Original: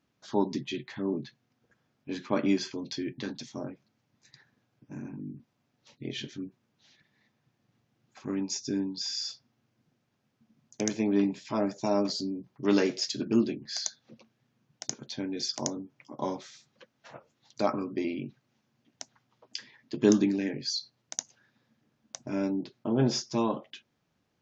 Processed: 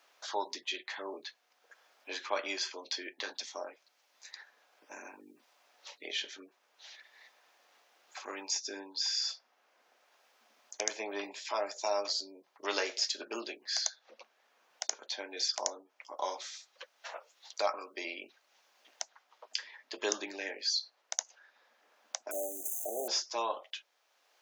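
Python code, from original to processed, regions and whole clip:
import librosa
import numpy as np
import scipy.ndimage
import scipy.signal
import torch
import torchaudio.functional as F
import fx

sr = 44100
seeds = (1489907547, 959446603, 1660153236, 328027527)

y = fx.chain(x, sr, fx.crossing_spikes(level_db=-29.5),
    fx.brickwall_bandstop(low_hz=800.0, high_hz=6000.0),
    fx.bass_treble(bass_db=-7, treble_db=5), at=(22.31, 23.08))
y = scipy.signal.sosfilt(scipy.signal.butter(4, 560.0, 'highpass', fs=sr, output='sos'), y)
y = fx.band_squash(y, sr, depth_pct=40)
y = y * 10.0 ** (2.0 / 20.0)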